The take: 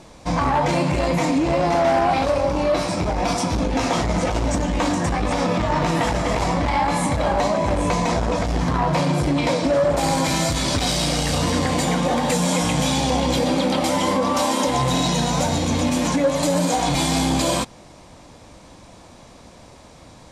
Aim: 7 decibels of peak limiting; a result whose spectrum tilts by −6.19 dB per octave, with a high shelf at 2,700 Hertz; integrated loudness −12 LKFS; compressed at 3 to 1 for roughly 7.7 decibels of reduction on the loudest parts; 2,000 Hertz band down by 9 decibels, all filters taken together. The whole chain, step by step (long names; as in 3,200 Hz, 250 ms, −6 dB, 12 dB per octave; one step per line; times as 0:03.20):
parametric band 2,000 Hz −8.5 dB
high-shelf EQ 2,700 Hz −6.5 dB
downward compressor 3 to 1, threshold −27 dBFS
level +20 dB
brickwall limiter −3.5 dBFS